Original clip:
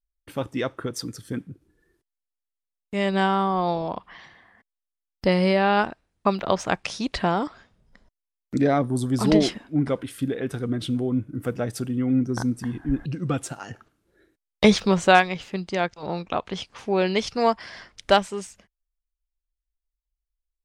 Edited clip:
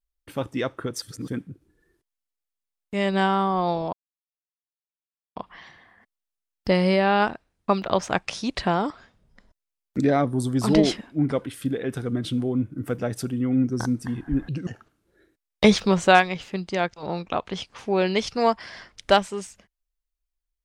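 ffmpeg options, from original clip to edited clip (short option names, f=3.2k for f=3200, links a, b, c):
-filter_complex "[0:a]asplit=5[a][b][c][d][e];[a]atrim=end=1.022[f];[b]atrim=start=1.018:end=1.282,asetpts=PTS-STARTPTS,areverse[g];[c]atrim=start=1.278:end=3.93,asetpts=PTS-STARTPTS,afade=t=out:st=2.648:d=0.004:c=hsin,apad=pad_dur=1.43[h];[d]atrim=start=3.93:end=13.242,asetpts=PTS-STARTPTS,afade=t=in:d=0.004:c=hsin[i];[e]atrim=start=13.668[j];[f][g]acrossfade=d=0.004:c1=hsin:c2=hsin[k];[h][i]concat=n=2:v=0:a=1[l];[k][l]acrossfade=d=0.004:c1=hsin:c2=hsin[m];[m][j]acrossfade=d=0.004:c1=hsin:c2=hsin"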